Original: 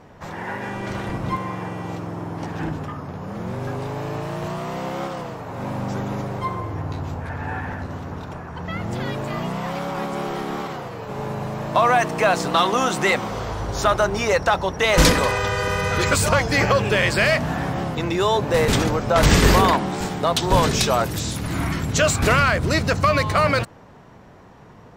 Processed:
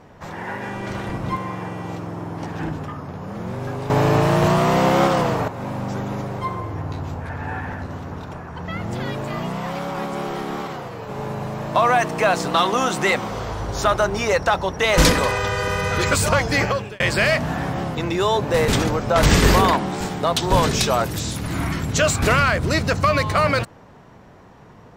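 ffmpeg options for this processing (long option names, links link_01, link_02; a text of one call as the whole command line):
ffmpeg -i in.wav -filter_complex "[0:a]asplit=4[link_01][link_02][link_03][link_04];[link_01]atrim=end=3.902[link_05];[link_02]atrim=start=3.898:end=5.482,asetpts=PTS-STARTPTS,volume=11.5dB[link_06];[link_03]atrim=start=5.478:end=17,asetpts=PTS-STARTPTS,afade=type=out:start_time=11.082:duration=0.44[link_07];[link_04]atrim=start=17,asetpts=PTS-STARTPTS,afade=type=in:duration=0.004:curve=hsin[link_08];[link_05][link_06]acrossfade=duration=0.004:curve1=hsin:curve2=hsin[link_09];[link_07][link_08]concat=n=2:v=0:a=1[link_10];[link_09][link_10]acrossfade=duration=0.004:curve1=hsin:curve2=hsin" out.wav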